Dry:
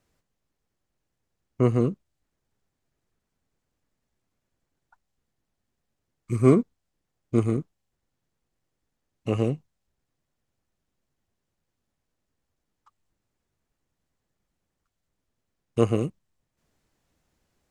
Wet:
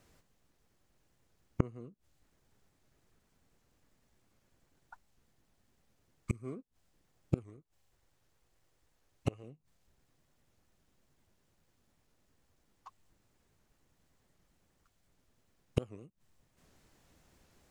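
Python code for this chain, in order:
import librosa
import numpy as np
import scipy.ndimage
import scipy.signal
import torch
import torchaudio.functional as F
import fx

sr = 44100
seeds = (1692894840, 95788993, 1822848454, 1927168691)

y = fx.peak_eq(x, sr, hz=210.0, db=-8.5, octaves=1.0, at=(7.44, 9.44))
y = fx.gate_flip(y, sr, shuts_db=-24.0, range_db=-33)
y = fx.record_warp(y, sr, rpm=78.0, depth_cents=160.0)
y = y * librosa.db_to_amplitude(7.0)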